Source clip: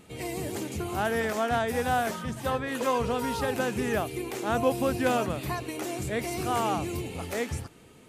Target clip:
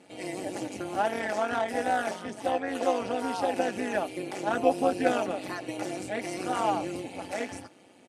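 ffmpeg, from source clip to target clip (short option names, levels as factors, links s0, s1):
-af "aecho=1:1:3.5:0.92,tremolo=f=190:d=0.788,highpass=f=130:w=0.5412,highpass=f=130:w=1.3066,equalizer=f=220:t=q:w=4:g=-5,equalizer=f=720:t=q:w=4:g=8,equalizer=f=1100:t=q:w=4:g=-5,equalizer=f=3600:t=q:w=4:g=-4,equalizer=f=7200:t=q:w=4:g=-5,lowpass=f=9500:w=0.5412,lowpass=f=9500:w=1.3066"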